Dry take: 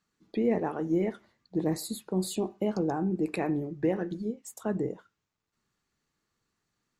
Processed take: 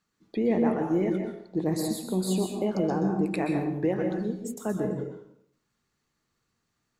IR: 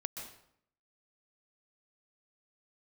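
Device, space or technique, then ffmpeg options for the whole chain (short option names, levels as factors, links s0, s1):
bathroom: -filter_complex "[1:a]atrim=start_sample=2205[s0];[0:a][s0]afir=irnorm=-1:irlink=0,volume=1.41"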